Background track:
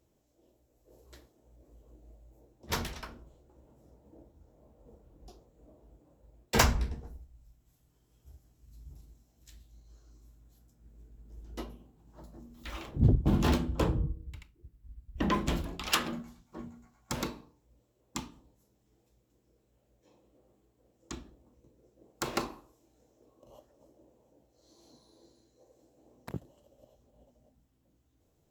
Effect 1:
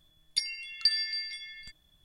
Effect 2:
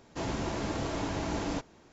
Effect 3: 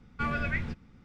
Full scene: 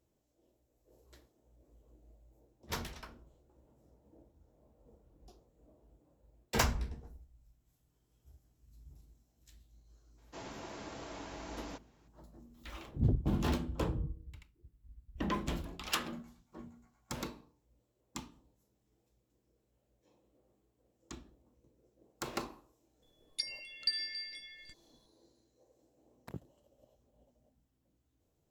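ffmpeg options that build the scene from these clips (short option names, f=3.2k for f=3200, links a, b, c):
-filter_complex "[0:a]volume=-6dB[a];[2:a]lowshelf=f=230:g=-10,atrim=end=1.92,asetpts=PTS-STARTPTS,volume=-10dB,afade=t=in:d=0.02,afade=t=out:st=1.9:d=0.02,adelay=10170[b];[1:a]atrim=end=2.04,asetpts=PTS-STARTPTS,volume=-7.5dB,afade=t=in:d=0.004:c=hsin,afade=t=out:st=2.036:d=0.004:c=hsin,adelay=23020[c];[a][b][c]amix=inputs=3:normalize=0"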